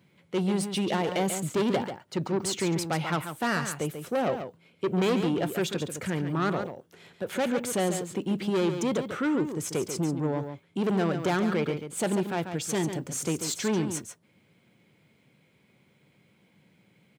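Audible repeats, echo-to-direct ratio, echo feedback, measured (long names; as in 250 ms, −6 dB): 1, −8.5 dB, repeats not evenly spaced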